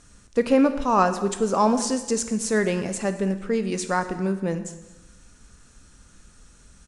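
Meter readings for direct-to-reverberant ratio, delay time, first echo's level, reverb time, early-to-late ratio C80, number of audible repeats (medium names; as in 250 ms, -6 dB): 8.5 dB, 223 ms, -21.5 dB, 1.1 s, 12.5 dB, 1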